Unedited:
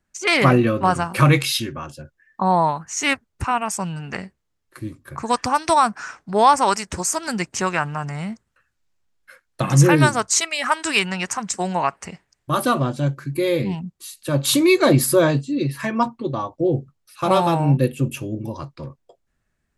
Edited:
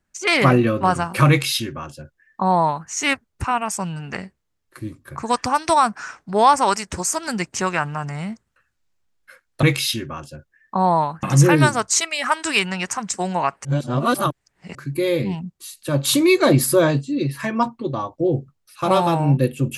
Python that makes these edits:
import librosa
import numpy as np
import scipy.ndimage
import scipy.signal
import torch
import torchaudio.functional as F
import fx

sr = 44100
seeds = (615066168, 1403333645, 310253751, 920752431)

y = fx.edit(x, sr, fx.duplicate(start_s=1.29, length_s=1.6, to_s=9.63),
    fx.reverse_span(start_s=12.05, length_s=1.1), tone=tone)